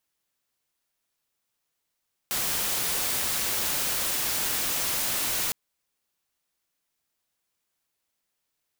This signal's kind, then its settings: noise white, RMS -27.5 dBFS 3.21 s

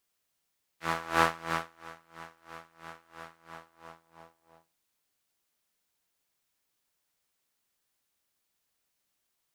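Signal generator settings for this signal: synth patch with tremolo E3, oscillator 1 saw, sub -7 dB, noise -5 dB, filter bandpass, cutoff 790 Hz, Q 1.7, filter envelope 1.5 oct, filter decay 0.06 s, filter sustain 45%, attack 0.259 s, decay 0.70 s, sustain -24 dB, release 1.43 s, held 2.55 s, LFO 3 Hz, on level 23.5 dB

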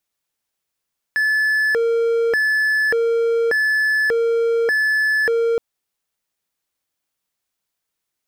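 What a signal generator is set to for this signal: siren hi-lo 462–1730 Hz 0.85/s triangle -13 dBFS 4.42 s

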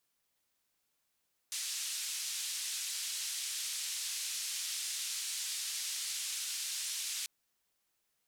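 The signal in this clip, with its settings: noise band 3100–8600 Hz, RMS -38.5 dBFS 5.74 s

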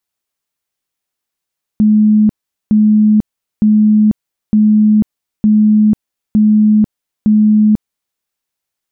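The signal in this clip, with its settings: tone bursts 213 Hz, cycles 105, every 0.91 s, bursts 7, -5.5 dBFS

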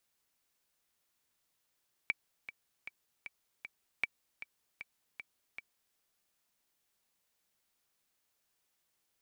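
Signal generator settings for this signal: metronome 155 bpm, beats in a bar 5, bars 2, 2310 Hz, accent 13.5 dB -17 dBFS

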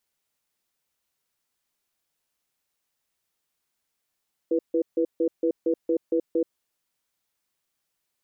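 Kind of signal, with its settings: cadence 333 Hz, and 489 Hz, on 0.08 s, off 0.15 s, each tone -22.5 dBFS 1.94 s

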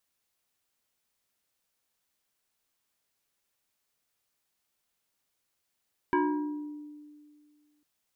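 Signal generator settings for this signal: FM tone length 1.70 s, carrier 297 Hz, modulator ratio 2.22, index 1.8, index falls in 1.43 s exponential, decay 2.09 s, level -21 dB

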